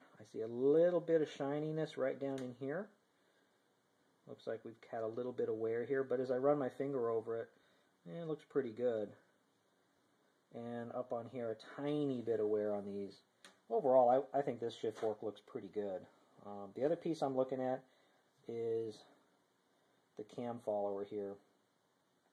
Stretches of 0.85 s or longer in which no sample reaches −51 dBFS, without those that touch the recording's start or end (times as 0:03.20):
0:02.86–0:04.28
0:09.14–0:10.54
0:19.01–0:20.17